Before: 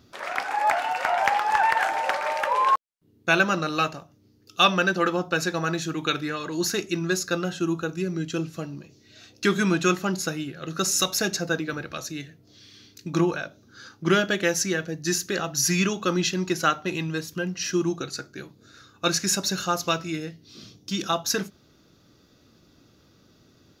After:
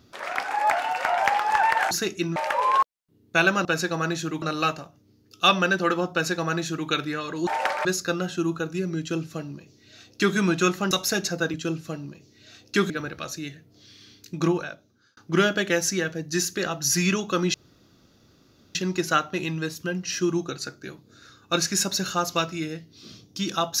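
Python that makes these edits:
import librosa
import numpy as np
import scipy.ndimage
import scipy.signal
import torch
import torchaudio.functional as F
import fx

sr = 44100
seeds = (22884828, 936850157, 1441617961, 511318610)

y = fx.edit(x, sr, fx.swap(start_s=1.91, length_s=0.38, other_s=6.63, other_length_s=0.45),
    fx.duplicate(start_s=5.28, length_s=0.77, to_s=3.58),
    fx.duplicate(start_s=8.23, length_s=1.36, to_s=11.63),
    fx.cut(start_s=10.14, length_s=0.86),
    fx.fade_out_span(start_s=13.17, length_s=0.73),
    fx.insert_room_tone(at_s=16.27, length_s=1.21), tone=tone)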